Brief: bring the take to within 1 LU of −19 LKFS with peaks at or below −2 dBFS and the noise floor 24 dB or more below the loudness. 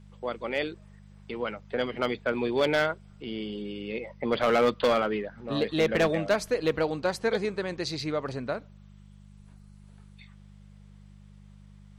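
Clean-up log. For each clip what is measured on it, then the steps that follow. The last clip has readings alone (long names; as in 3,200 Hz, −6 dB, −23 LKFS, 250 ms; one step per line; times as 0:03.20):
share of clipped samples 0.7%; peaks flattened at −17.5 dBFS; mains hum 50 Hz; hum harmonics up to 200 Hz; level of the hum −48 dBFS; integrated loudness −28.5 LKFS; sample peak −17.5 dBFS; target loudness −19.0 LKFS
→ clipped peaks rebuilt −17.5 dBFS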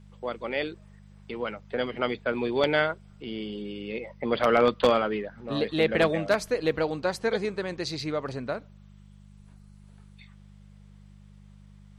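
share of clipped samples 0.0%; mains hum 50 Hz; hum harmonics up to 200 Hz; level of the hum −48 dBFS
→ hum removal 50 Hz, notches 4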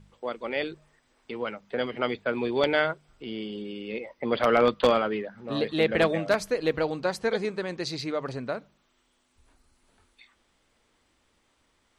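mains hum none found; integrated loudness −28.0 LKFS; sample peak −8.5 dBFS; target loudness −19.0 LKFS
→ level +9 dB
brickwall limiter −2 dBFS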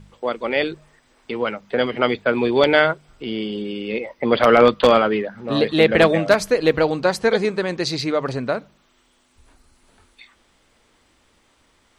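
integrated loudness −19.0 LKFS; sample peak −2.0 dBFS; background noise floor −61 dBFS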